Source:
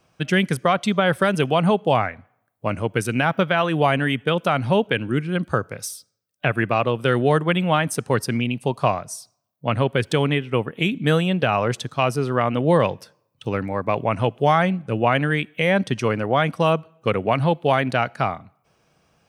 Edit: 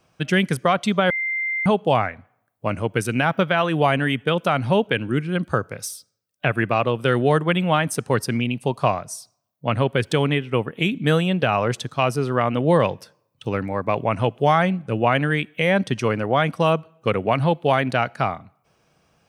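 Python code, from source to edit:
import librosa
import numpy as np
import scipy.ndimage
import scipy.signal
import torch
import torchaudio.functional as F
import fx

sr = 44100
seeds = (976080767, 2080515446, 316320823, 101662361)

y = fx.edit(x, sr, fx.bleep(start_s=1.1, length_s=0.56, hz=2090.0, db=-21.5), tone=tone)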